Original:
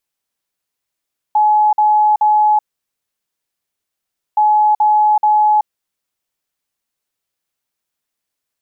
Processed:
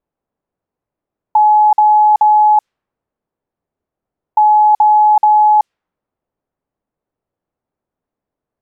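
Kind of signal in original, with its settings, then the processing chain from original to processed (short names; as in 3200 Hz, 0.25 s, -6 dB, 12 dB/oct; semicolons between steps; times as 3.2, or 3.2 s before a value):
beep pattern sine 848 Hz, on 0.38 s, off 0.05 s, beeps 3, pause 1.78 s, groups 2, -8.5 dBFS
low-pass opened by the level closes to 700 Hz, open at -9.5 dBFS; in parallel at 0 dB: negative-ratio compressor -17 dBFS, ratio -0.5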